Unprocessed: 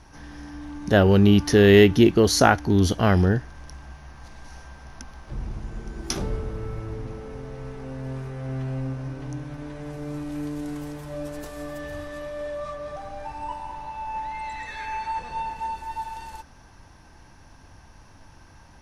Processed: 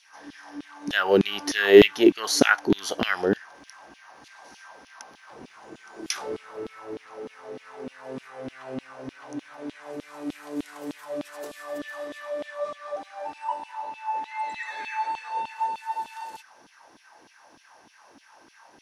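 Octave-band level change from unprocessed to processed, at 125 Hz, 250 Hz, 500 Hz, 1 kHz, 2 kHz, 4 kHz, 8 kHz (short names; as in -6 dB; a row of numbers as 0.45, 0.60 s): -16.5, -5.0, -1.0, -1.5, +1.5, +0.5, -1.5 dB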